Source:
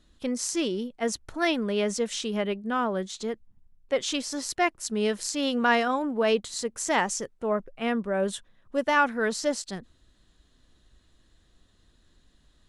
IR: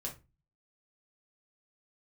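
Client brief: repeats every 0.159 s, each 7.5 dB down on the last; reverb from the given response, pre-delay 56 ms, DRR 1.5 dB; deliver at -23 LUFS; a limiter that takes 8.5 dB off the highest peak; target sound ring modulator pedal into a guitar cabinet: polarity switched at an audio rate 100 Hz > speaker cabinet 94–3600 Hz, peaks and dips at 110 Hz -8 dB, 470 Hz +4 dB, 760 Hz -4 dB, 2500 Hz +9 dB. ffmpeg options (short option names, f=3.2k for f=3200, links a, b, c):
-filter_complex "[0:a]alimiter=limit=-19dB:level=0:latency=1,aecho=1:1:159|318|477|636|795:0.422|0.177|0.0744|0.0312|0.0131,asplit=2[a][b];[1:a]atrim=start_sample=2205,adelay=56[c];[b][c]afir=irnorm=-1:irlink=0,volume=-1dB[d];[a][d]amix=inputs=2:normalize=0,aeval=exprs='val(0)*sgn(sin(2*PI*100*n/s))':c=same,highpass=94,equalizer=f=110:t=q:w=4:g=-8,equalizer=f=470:t=q:w=4:g=4,equalizer=f=760:t=q:w=4:g=-4,equalizer=f=2.5k:t=q:w=4:g=9,lowpass=f=3.6k:w=0.5412,lowpass=f=3.6k:w=1.3066,volume=3.5dB"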